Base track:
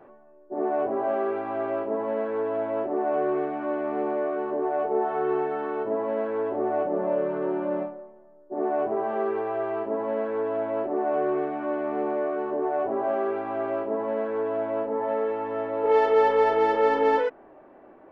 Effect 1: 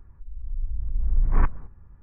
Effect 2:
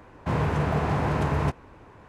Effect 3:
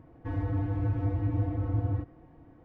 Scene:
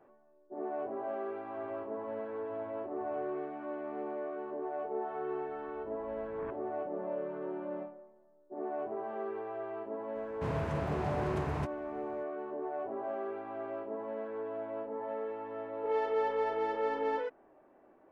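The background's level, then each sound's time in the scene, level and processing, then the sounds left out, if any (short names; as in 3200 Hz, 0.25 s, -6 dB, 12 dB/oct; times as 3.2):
base track -11.5 dB
1.27 add 3 -2.5 dB + band-pass 1100 Hz, Q 5.9
5.05 add 1 -16.5 dB + HPF 150 Hz
10.15 add 2 -10.5 dB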